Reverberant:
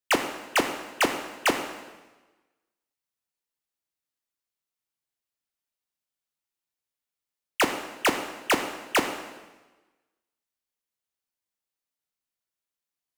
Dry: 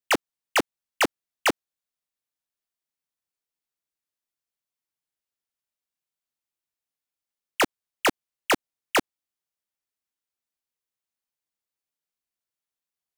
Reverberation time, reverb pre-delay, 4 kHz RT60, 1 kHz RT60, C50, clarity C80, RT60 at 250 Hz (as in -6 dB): 1.2 s, 7 ms, 1.1 s, 1.2 s, 8.0 dB, 9.5 dB, 1.2 s